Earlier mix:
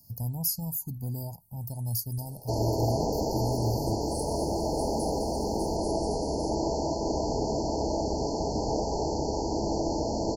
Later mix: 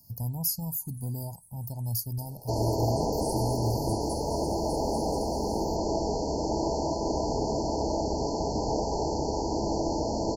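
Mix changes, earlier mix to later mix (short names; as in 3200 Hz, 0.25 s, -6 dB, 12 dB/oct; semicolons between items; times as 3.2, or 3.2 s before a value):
first sound: entry -0.90 s; master: remove Butterworth band-stop 1400 Hz, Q 1.3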